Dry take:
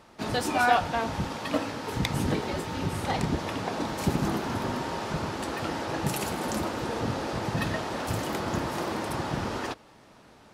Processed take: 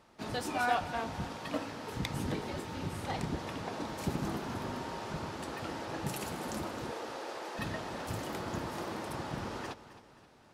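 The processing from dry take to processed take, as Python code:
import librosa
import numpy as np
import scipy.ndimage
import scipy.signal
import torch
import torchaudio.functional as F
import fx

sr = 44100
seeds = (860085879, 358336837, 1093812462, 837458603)

y = fx.highpass(x, sr, hz=350.0, slope=24, at=(6.92, 7.59))
y = fx.echo_feedback(y, sr, ms=265, feedback_pct=45, wet_db=-15.0)
y = y * librosa.db_to_amplitude(-8.0)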